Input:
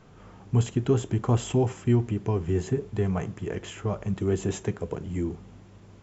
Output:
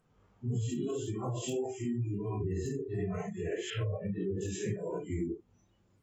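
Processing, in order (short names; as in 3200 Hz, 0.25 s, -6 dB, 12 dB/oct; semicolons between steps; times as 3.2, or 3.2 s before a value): phase scrambler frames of 0.2 s; 3.7–4.41 speaker cabinet 100–3800 Hz, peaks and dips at 100 Hz +9 dB, 150 Hz +8 dB, 490 Hz +5 dB; limiter -20.5 dBFS, peak gain reduction 10 dB; compressor 4:1, threshold -39 dBFS, peak gain reduction 13 dB; wavefolder -32.5 dBFS; spectral noise reduction 25 dB; gain +7 dB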